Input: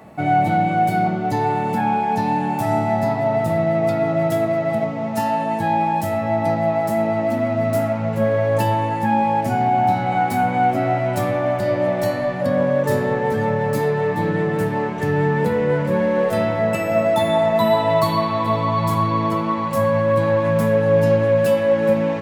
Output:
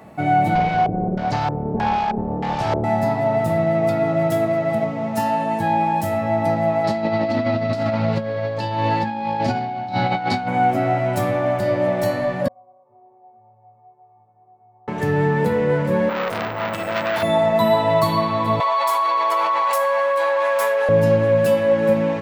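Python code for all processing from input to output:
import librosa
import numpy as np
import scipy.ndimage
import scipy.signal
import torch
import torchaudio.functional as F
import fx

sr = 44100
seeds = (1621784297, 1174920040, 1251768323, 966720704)

y = fx.chain(x, sr, fx.lower_of_two(delay_ms=1.3),
    fx.filter_lfo_lowpass(shape='square', hz=1.6, low_hz=410.0, high_hz=5000.0, q=1.9), at=(0.55, 2.84))
y = fx.chain(y, sr, fx.over_compress(threshold_db=-21.0, ratio=-0.5),
    fx.lowpass_res(hz=4400.0, q=4.2), at=(6.84, 10.48))
y = fx.chain(y, sr, fx.formant_cascade(vowel='a'),
    fx.air_absorb(metres=290.0),
    fx.stiff_resonator(f0_hz=110.0, decay_s=0.76, stiffness=0.03), at=(12.48, 14.88))
y = fx.chain(y, sr, fx.resample_bad(factor=2, down='none', up='hold'),
    fx.transformer_sat(knee_hz=2400.0), at=(16.09, 17.23))
y = fx.chain(y, sr, fx.highpass(hz=620.0, slope=24),
    fx.env_flatten(amount_pct=100), at=(18.6, 20.89))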